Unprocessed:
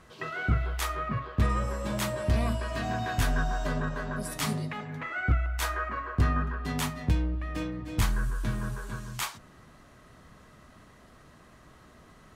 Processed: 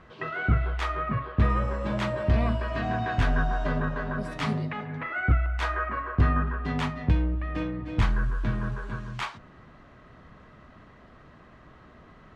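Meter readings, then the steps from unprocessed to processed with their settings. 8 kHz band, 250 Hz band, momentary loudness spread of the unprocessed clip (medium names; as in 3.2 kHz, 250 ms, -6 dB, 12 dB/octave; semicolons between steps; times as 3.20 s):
under -10 dB, +3.0 dB, 7 LU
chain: low-pass 2.9 kHz 12 dB/octave; trim +3 dB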